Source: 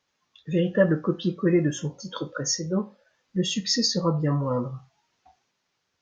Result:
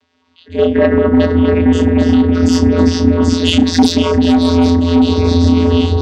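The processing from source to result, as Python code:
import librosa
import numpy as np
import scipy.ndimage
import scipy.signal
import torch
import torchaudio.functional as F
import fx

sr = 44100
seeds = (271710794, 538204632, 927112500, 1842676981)

p1 = fx.doubler(x, sr, ms=32.0, db=-5)
p2 = fx.transient(p1, sr, attack_db=-12, sustain_db=0)
p3 = p2 + fx.echo_alternate(p2, sr, ms=391, hz=2300.0, feedback_pct=73, wet_db=-4.0, dry=0)
p4 = fx.echo_pitch(p3, sr, ms=96, semitones=-2, count=3, db_per_echo=-6.0)
p5 = fx.bass_treble(p4, sr, bass_db=9, treble_db=-3)
p6 = fx.vocoder(p5, sr, bands=16, carrier='square', carrier_hz=85.6)
p7 = fx.peak_eq(p6, sr, hz=3500.0, db=7.0, octaves=1.2)
p8 = fx.fold_sine(p7, sr, drive_db=9, ceiling_db=-2.5)
p9 = fx.rider(p8, sr, range_db=10, speed_s=0.5)
y = F.gain(torch.from_numpy(p9), -1.5).numpy()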